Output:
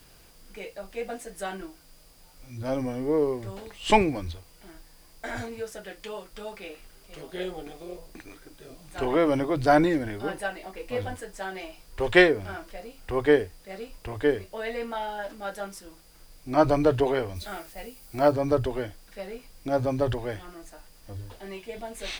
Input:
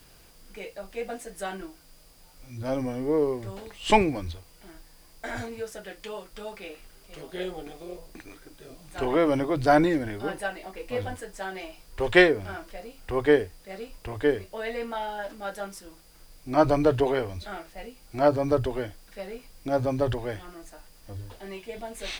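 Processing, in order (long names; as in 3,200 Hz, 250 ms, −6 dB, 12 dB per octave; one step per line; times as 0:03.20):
0:17.35–0:18.31: high-shelf EQ 5,700 Hz → 11,000 Hz +11.5 dB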